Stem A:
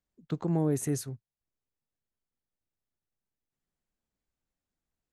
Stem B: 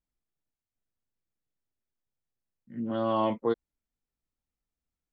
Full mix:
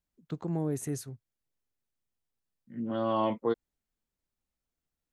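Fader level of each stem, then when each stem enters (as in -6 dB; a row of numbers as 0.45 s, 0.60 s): -4.0 dB, -1.5 dB; 0.00 s, 0.00 s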